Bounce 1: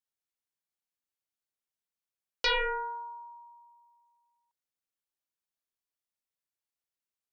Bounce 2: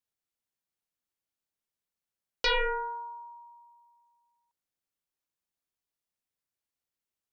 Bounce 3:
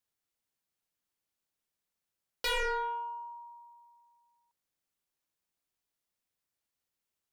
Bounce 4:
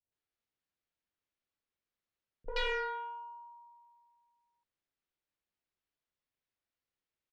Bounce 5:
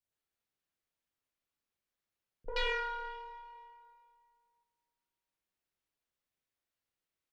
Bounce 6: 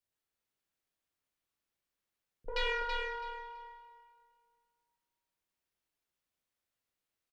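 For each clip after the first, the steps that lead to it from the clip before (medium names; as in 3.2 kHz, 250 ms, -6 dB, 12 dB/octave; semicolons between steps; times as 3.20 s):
bass shelf 460 Hz +5 dB
saturation -31.5 dBFS, distortion -8 dB; trim +2.5 dB
distance through air 190 m; three bands offset in time lows, mids, highs 40/120 ms, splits 190/860 Hz
plate-style reverb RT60 2.1 s, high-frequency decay 0.9×, DRR 9 dB
feedback delay 330 ms, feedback 21%, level -6 dB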